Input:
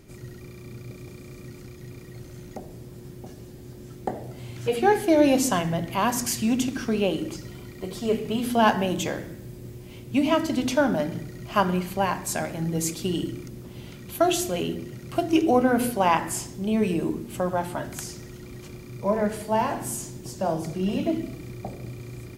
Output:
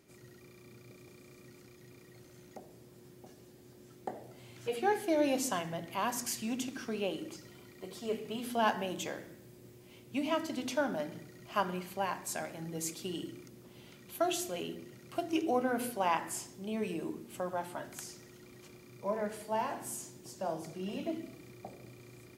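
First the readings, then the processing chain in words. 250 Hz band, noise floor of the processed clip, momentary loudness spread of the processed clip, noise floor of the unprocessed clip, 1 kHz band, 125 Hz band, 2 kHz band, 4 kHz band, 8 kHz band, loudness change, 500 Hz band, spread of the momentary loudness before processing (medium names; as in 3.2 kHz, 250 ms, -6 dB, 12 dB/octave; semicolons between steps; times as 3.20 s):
-13.0 dB, -57 dBFS, 23 LU, -43 dBFS, -9.5 dB, -16.0 dB, -9.0 dB, -9.0 dB, -9.0 dB, -11.0 dB, -10.5 dB, 21 LU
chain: high-pass 310 Hz 6 dB/octave; trim -9 dB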